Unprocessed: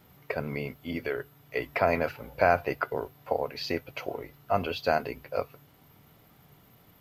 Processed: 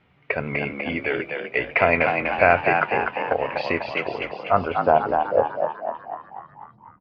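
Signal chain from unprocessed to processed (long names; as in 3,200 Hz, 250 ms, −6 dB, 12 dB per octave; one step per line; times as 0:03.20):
noise gate −47 dBFS, range −8 dB
low-pass filter sweep 2,500 Hz → 120 Hz, 0:04.05–0:06.83
echo with shifted repeats 247 ms, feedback 58%, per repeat +66 Hz, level −5 dB
level +4.5 dB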